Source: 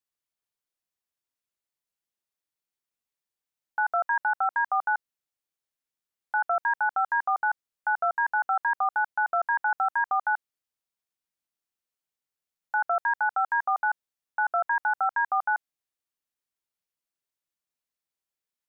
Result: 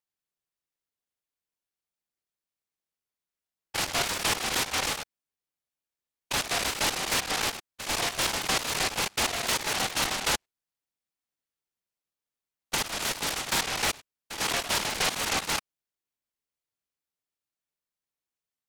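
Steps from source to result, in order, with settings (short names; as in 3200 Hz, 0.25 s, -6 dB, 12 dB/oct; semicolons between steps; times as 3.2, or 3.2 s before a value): stepped spectrum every 0.1 s; 12.75–13.47 HPF 1000 Hz 12 dB/oct; noise-modulated delay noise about 1600 Hz, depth 0.31 ms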